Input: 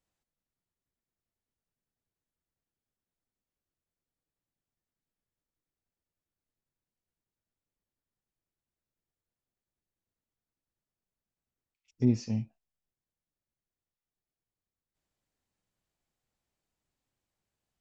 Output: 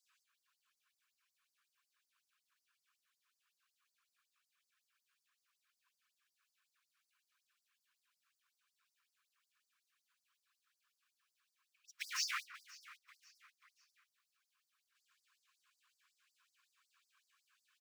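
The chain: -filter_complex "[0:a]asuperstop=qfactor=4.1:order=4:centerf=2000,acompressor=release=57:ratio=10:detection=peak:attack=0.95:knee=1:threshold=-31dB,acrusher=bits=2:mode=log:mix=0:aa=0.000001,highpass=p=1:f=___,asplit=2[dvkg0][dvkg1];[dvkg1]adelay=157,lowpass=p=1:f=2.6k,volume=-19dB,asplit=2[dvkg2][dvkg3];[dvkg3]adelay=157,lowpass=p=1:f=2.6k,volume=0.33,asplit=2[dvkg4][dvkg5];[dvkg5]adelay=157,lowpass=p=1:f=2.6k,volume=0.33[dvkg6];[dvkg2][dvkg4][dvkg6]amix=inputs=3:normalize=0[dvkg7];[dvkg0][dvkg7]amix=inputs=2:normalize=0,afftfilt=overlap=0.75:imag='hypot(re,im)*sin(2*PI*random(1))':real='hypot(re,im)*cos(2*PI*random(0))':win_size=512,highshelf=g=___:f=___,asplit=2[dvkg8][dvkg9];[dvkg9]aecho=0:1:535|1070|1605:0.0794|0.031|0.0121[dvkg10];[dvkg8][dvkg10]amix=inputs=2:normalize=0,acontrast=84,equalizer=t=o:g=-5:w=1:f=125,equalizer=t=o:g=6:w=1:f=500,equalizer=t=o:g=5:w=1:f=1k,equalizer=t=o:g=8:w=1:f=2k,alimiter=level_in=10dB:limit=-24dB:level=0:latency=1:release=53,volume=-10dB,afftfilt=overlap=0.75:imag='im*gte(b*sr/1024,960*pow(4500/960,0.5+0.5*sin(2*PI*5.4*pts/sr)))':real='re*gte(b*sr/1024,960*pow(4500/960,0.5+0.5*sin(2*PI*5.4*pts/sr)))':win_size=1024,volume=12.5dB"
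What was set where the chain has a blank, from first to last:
55, -9.5, 5.3k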